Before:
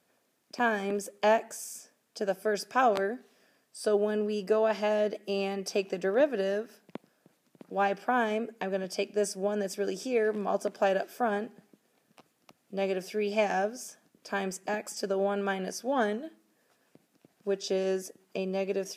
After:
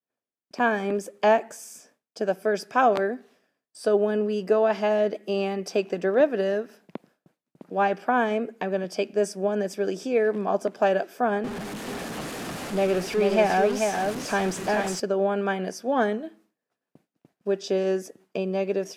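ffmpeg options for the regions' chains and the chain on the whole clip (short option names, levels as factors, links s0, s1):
-filter_complex "[0:a]asettb=1/sr,asplit=3[s0][s1][s2];[s0]atrim=end=11.444[s3];[s1]atrim=start=11.44:end=15,asetpts=PTS-STARTPTS,afade=t=in:d=0.004:c=qsin,afade=t=out:st=3.556:d=0.004:c=qsin,aeval=exprs='val(0)+0.5*0.0237*sgn(val(0))':c=same,lowpass=12000,aecho=1:1:437:0.596,atrim=end_sample=156996[s4];[s2]atrim=start=14.996[s5];[s3][s4]acrossfade=d=0.004:c1=hsin:c2=qsin[s6];[s6][s5]acrossfade=d=0.004:c1=qsin:c2=hsin,agate=range=0.0224:threshold=0.00158:ratio=3:detection=peak,highshelf=f=3800:g=-8,volume=1.78"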